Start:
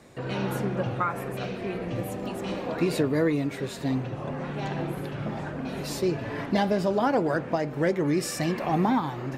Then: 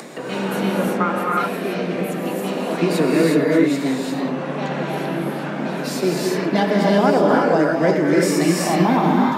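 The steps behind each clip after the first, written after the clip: steep high-pass 150 Hz 72 dB/oct; upward compressor, threshold -32 dBFS; non-linear reverb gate 0.39 s rising, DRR -2.5 dB; gain +5 dB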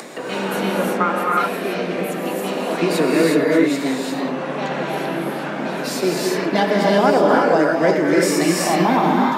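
HPF 290 Hz 6 dB/oct; gain +2.5 dB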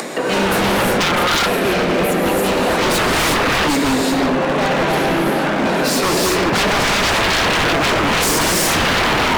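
wavefolder -20 dBFS; gain +9 dB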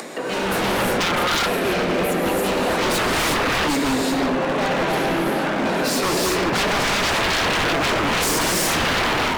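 notches 50/100/150/200 Hz; AGC gain up to 3.5 dB; gain -7.5 dB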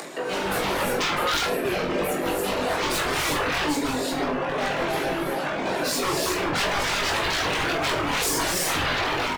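reverb removal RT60 1.4 s; bell 220 Hz -12.5 dB 0.2 oct; on a send: reverse bouncing-ball echo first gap 20 ms, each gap 1.2×, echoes 5; on the sum: gain -3.5 dB

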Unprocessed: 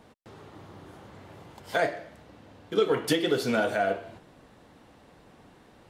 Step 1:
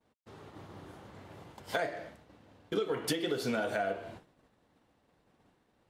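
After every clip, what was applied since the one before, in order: expander -44 dBFS; compressor 6:1, threshold -29 dBFS, peak gain reduction 11 dB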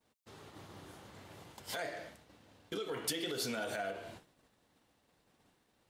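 limiter -27 dBFS, peak gain reduction 9.5 dB; high shelf 2700 Hz +11 dB; gain -4 dB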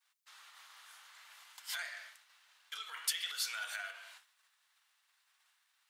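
HPF 1200 Hz 24 dB/oct; gain +2.5 dB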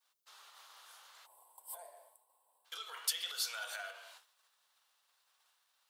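spectral gain 1.26–2.65, 1100–7600 Hz -23 dB; graphic EQ 500/2000/8000 Hz +7/-9/-3 dB; gain +2.5 dB

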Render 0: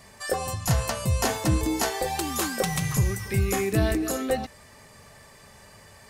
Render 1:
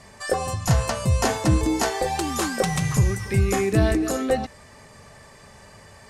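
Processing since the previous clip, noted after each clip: LPF 8500 Hz 12 dB/oct; bell 3500 Hz -3 dB 1.8 oct; gain +4 dB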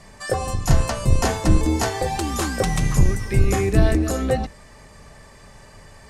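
octaver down 2 oct, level +3 dB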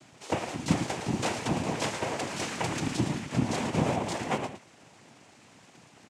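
minimum comb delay 1.4 ms; echo 0.112 s -8.5 dB; noise vocoder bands 4; gain -6 dB

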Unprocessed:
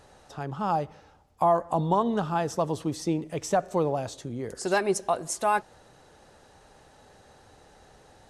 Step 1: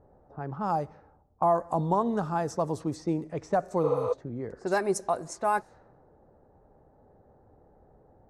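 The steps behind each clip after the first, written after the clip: low-pass opened by the level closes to 590 Hz, open at -23.5 dBFS; spectral repair 3.86–4.1, 380–8600 Hz before; bell 3100 Hz -13 dB 0.68 oct; gain -1.5 dB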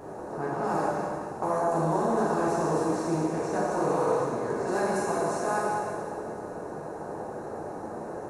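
per-bin compression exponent 0.4; flange 1.4 Hz, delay 9.6 ms, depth 2.3 ms, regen -47%; plate-style reverb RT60 2.2 s, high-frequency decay 0.95×, DRR -7 dB; gain -8 dB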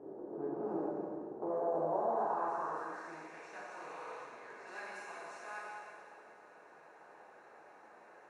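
band-pass sweep 350 Hz -> 2400 Hz, 1.32–3.44; gain -3 dB

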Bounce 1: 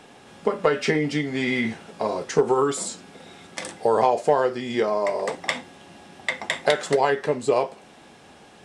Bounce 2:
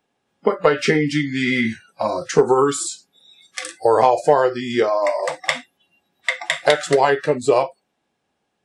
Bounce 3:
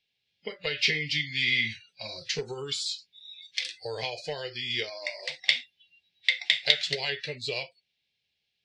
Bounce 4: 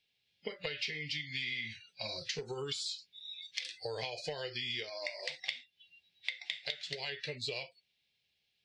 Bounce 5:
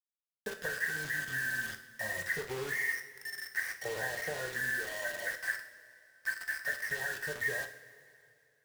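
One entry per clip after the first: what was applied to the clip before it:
spectral noise reduction 29 dB; gain +5 dB
EQ curve 120 Hz 0 dB, 290 Hz -17 dB, 450 Hz -10 dB, 730 Hz -15 dB, 1200 Hz -21 dB, 2200 Hz +8 dB, 4400 Hz +14 dB, 8600 Hz -11 dB; gain -9 dB
compressor 10:1, threshold -35 dBFS, peak gain reduction 20.5 dB
nonlinear frequency compression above 1400 Hz 4:1; bit-crush 7-bit; two-slope reverb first 0.52 s, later 2.8 s, from -15 dB, DRR 5 dB

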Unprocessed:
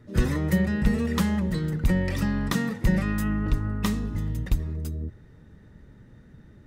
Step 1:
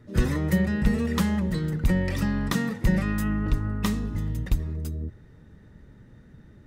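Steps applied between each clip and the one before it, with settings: nothing audible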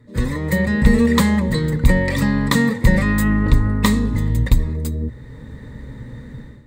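ripple EQ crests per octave 1, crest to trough 9 dB; AGC gain up to 14.5 dB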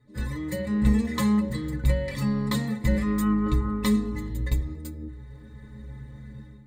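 metallic resonator 63 Hz, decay 0.49 s, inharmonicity 0.03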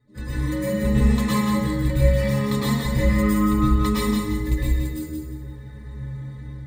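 thinning echo 0.174 s, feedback 29%, level -5 dB; plate-style reverb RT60 0.74 s, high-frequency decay 0.85×, pre-delay 95 ms, DRR -7 dB; gain -3 dB

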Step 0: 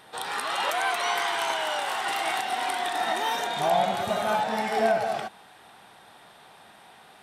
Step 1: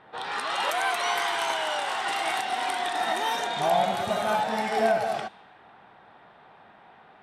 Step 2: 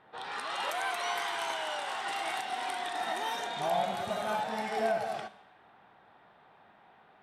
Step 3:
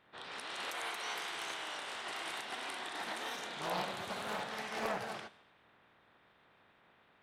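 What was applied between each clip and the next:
low-pass opened by the level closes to 1800 Hz, open at -22.5 dBFS
Schroeder reverb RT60 0.68 s, combs from 30 ms, DRR 15.5 dB; gain -7 dB
spectral limiter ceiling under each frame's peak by 15 dB; Doppler distortion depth 0.45 ms; gain -7 dB

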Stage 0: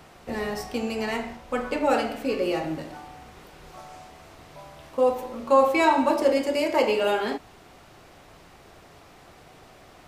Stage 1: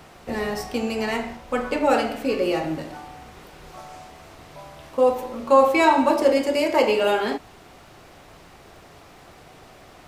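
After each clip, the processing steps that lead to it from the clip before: crackle 150/s -57 dBFS; gain +3 dB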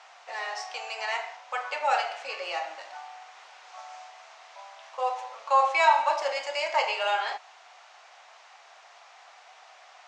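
elliptic band-pass 730–6700 Hz, stop band 50 dB; gain -1.5 dB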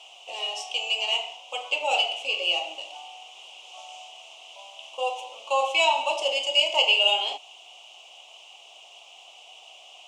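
EQ curve 150 Hz 0 dB, 290 Hz +5 dB, 700 Hz -2 dB, 1100 Hz -9 dB, 1700 Hz -29 dB, 2900 Hz +15 dB, 4300 Hz -5 dB, 9600 Hz +11 dB; gain +2.5 dB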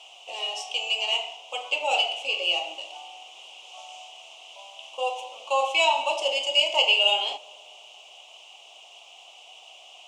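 darkening echo 0.122 s, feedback 79%, low-pass 1600 Hz, level -22 dB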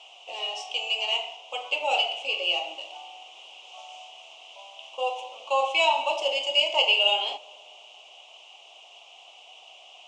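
air absorption 65 m

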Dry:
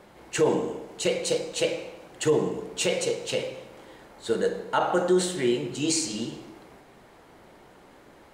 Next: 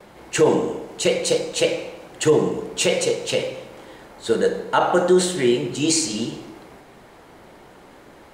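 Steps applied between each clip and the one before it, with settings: gate with hold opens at -45 dBFS; gain +6 dB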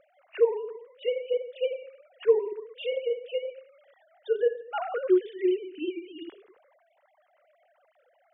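sine-wave speech; gain -8 dB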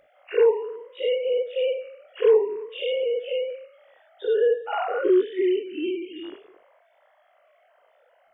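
spectral dilation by 0.12 s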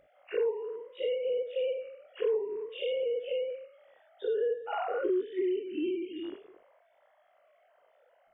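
low shelf 370 Hz +10 dB; compressor 3:1, threshold -22 dBFS, peak gain reduction 9.5 dB; gain -7 dB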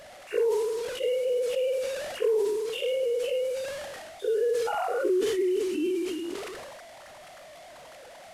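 delta modulation 64 kbps, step -45 dBFS; sustainer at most 25 dB/s; gain +3.5 dB

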